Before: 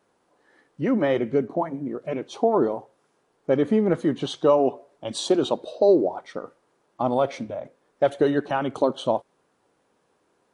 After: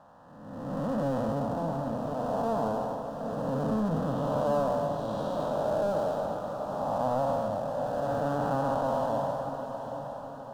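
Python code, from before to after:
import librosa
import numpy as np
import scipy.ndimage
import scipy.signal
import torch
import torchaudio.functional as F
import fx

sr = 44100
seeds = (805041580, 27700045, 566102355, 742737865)

y = fx.spec_blur(x, sr, span_ms=512.0)
y = scipy.signal.sosfilt(scipy.signal.butter(2, 1700.0, 'lowpass', fs=sr, output='sos'), y)
y = fx.hum_notches(y, sr, base_hz=60, count=8)
y = fx.power_curve(y, sr, exponent=0.7)
y = fx.fixed_phaser(y, sr, hz=900.0, stages=4)
y = fx.echo_diffused(y, sr, ms=805, feedback_pct=51, wet_db=-8.5)
y = y * 10.0 ** (3.0 / 20.0)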